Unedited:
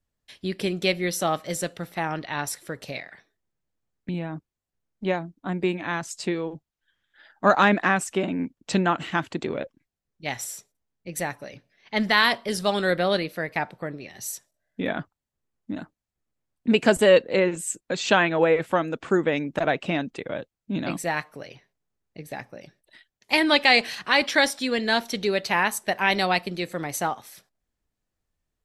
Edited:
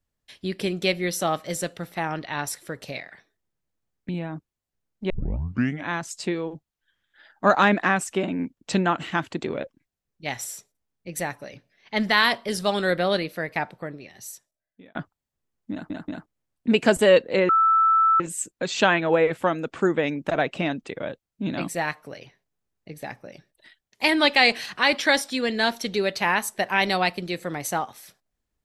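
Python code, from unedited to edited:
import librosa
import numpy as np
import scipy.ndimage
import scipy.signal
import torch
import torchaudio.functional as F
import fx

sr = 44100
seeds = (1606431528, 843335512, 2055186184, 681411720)

y = fx.edit(x, sr, fx.tape_start(start_s=5.1, length_s=0.77),
    fx.fade_out_span(start_s=13.63, length_s=1.32),
    fx.stutter_over(start_s=15.72, slice_s=0.18, count=3),
    fx.insert_tone(at_s=17.49, length_s=0.71, hz=1320.0, db=-15.0), tone=tone)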